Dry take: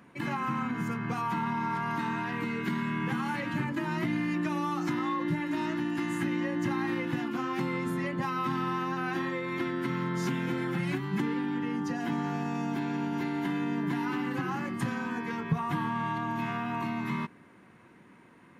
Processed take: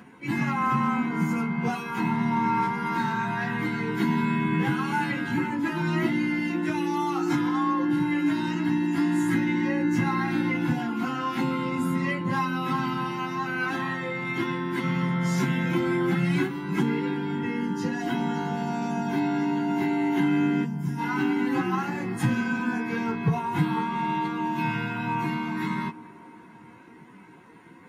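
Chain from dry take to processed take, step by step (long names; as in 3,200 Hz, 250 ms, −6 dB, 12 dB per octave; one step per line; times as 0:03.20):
gain on a spectral selection 0:13.76–0:14.00, 250–4,700 Hz −15 dB
floating-point word with a short mantissa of 8 bits
notch comb filter 600 Hz
time stretch by phase vocoder 1.5×
on a send: delay with a band-pass on its return 338 ms, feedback 70%, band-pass 500 Hz, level −16.5 dB
on the sum: level +9 dB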